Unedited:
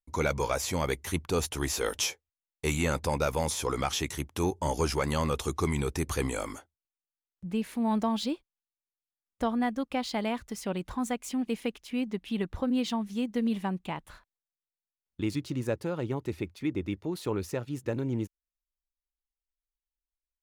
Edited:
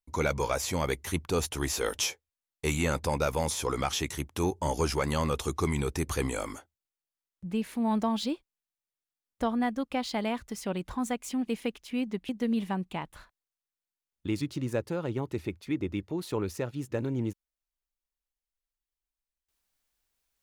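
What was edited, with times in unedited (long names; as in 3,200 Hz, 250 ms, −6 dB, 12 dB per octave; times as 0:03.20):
0:12.29–0:13.23: remove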